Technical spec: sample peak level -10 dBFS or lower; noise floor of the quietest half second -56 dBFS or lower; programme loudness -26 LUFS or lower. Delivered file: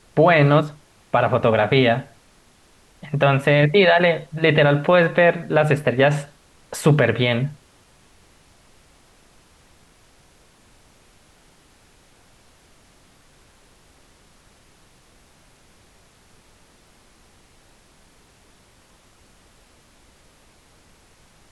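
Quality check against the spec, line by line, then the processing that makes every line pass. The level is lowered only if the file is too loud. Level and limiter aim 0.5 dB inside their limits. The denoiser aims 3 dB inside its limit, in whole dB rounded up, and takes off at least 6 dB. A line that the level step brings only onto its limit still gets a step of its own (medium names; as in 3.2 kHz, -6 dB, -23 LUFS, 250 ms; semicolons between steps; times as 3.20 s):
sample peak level -5.0 dBFS: fail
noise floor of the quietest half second -54 dBFS: fail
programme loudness -18.0 LUFS: fail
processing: trim -8.5 dB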